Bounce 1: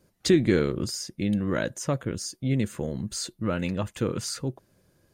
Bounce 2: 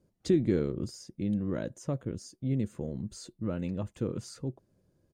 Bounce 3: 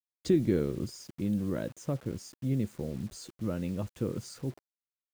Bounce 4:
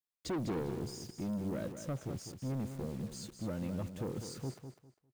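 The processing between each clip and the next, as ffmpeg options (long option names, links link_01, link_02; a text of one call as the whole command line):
ffmpeg -i in.wav -af "firequalizer=gain_entry='entry(280,0);entry(890,-6);entry(1600,-11);entry(7400,-9);entry(12000,-14)':delay=0.05:min_phase=1,volume=-4.5dB" out.wav
ffmpeg -i in.wav -af "acrusher=bits=8:mix=0:aa=0.000001" out.wav
ffmpeg -i in.wav -af "asoftclip=type=tanh:threshold=-31dB,aecho=1:1:201|402|603:0.355|0.0816|0.0188,volume=-1.5dB" out.wav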